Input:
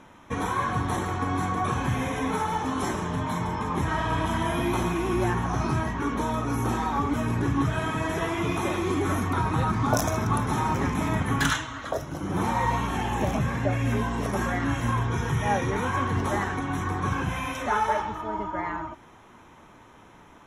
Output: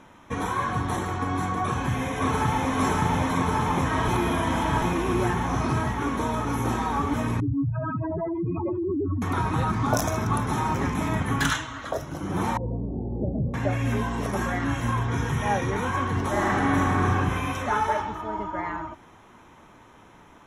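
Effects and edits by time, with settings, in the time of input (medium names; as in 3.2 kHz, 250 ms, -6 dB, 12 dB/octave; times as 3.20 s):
1.63–2.74 s: echo throw 570 ms, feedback 85%, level -0.5 dB
4.08–4.82 s: reverse
7.40–9.22 s: spectral contrast enhancement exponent 3.9
12.57–13.54 s: steep low-pass 570 Hz
14.57–15.06 s: echo throw 510 ms, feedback 40%, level -9.5 dB
16.31–17.00 s: reverb throw, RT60 2.8 s, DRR -4.5 dB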